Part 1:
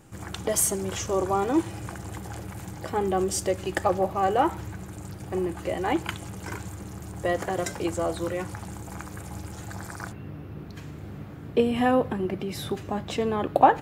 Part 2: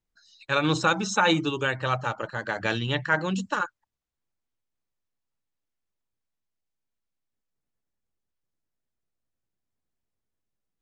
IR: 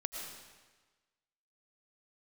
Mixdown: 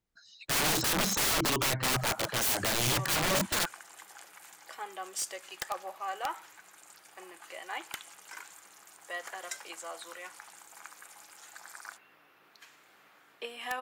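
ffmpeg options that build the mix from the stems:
-filter_complex "[0:a]highpass=1200,adelay=1850,volume=-4.5dB[link_01];[1:a]highshelf=frequency=2400:gain=-3,volume=3dB[link_02];[link_01][link_02]amix=inputs=2:normalize=0,highpass=frequency=53:poles=1,aeval=exprs='(mod(14.1*val(0)+1,2)-1)/14.1':channel_layout=same"

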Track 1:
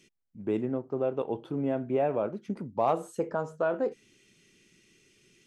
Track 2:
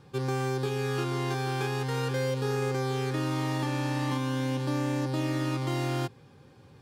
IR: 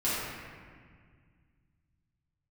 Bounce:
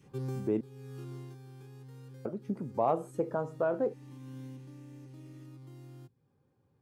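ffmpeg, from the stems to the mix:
-filter_complex "[0:a]volume=-0.5dB,asplit=3[link_01][link_02][link_03];[link_01]atrim=end=0.61,asetpts=PTS-STARTPTS,afade=type=out:start_time=0.606:duration=0.004:curve=hsin[link_04];[link_02]atrim=start=0.61:end=2.25,asetpts=PTS-STARTPTS,volume=0[link_05];[link_03]atrim=start=2.25,asetpts=PTS-STARTPTS,afade=type=in:duration=0.004:curve=hsin[link_06];[link_04][link_05][link_06]concat=n=3:v=0:a=1,asplit=2[link_07][link_08];[1:a]adynamicequalizer=threshold=0.00631:dfrequency=600:dqfactor=0.75:tfrequency=600:tqfactor=0.75:attack=5:release=100:ratio=0.375:range=2.5:mode=cutabove:tftype=bell,acrossover=split=410|3000[link_09][link_10][link_11];[link_10]acompressor=threshold=-52dB:ratio=2[link_12];[link_09][link_12][link_11]amix=inputs=3:normalize=0,volume=7dB,afade=type=out:start_time=0.77:duration=0.61:silence=0.237137,afade=type=in:start_time=2.24:duration=0.77:silence=0.281838,afade=type=out:start_time=3.9:duration=0.78:silence=0.251189[link_13];[link_08]apad=whole_len=300401[link_14];[link_13][link_14]sidechaincompress=threshold=-47dB:ratio=4:attack=47:release=390[link_15];[link_07][link_15]amix=inputs=2:normalize=0,equalizer=frequency=4200:width=0.43:gain=-11"

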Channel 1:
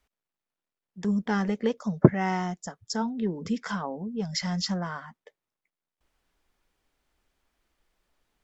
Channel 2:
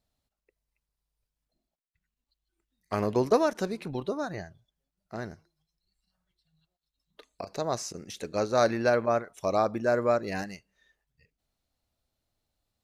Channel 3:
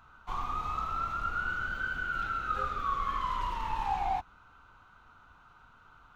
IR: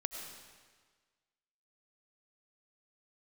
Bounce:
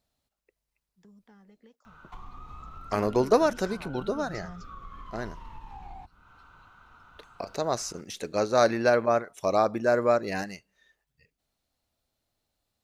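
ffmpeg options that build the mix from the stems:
-filter_complex "[0:a]acrossover=split=370|1000[link_01][link_02][link_03];[link_01]acompressor=threshold=-33dB:ratio=4[link_04];[link_02]acompressor=threshold=-40dB:ratio=4[link_05];[link_03]acompressor=threshold=-43dB:ratio=4[link_06];[link_04][link_05][link_06]amix=inputs=3:normalize=0,volume=0.5dB[link_07];[1:a]lowshelf=frequency=140:gain=-5.5,volume=2.5dB,asplit=2[link_08][link_09];[2:a]acrossover=split=360[link_10][link_11];[link_11]acompressor=threshold=-49dB:ratio=2[link_12];[link_10][link_12]amix=inputs=2:normalize=0,adelay=1850,volume=3dB[link_13];[link_09]apad=whole_len=372126[link_14];[link_07][link_14]sidechaingate=range=-24dB:threshold=-55dB:ratio=16:detection=peak[link_15];[link_15][link_13]amix=inputs=2:normalize=0,acompressor=threshold=-42dB:ratio=3,volume=0dB[link_16];[link_08][link_16]amix=inputs=2:normalize=0"

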